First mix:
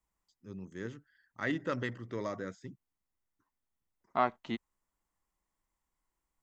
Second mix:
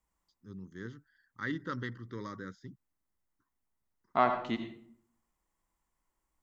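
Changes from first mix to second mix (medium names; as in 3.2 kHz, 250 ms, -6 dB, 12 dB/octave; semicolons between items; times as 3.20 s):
first voice: add static phaser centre 2.5 kHz, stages 6; reverb: on, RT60 0.60 s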